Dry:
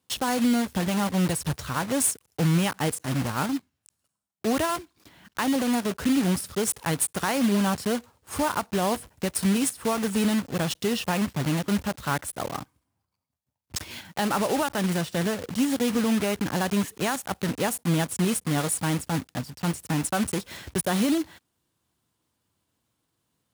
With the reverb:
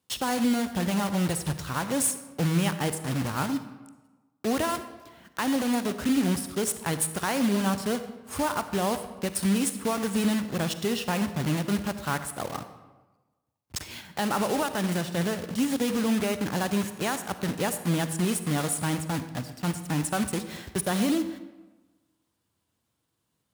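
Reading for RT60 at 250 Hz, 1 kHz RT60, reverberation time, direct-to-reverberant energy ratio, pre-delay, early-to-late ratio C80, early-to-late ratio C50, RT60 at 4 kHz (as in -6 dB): 1.3 s, 1.2 s, 1.2 s, 10.5 dB, 39 ms, 12.5 dB, 11.0 dB, 0.75 s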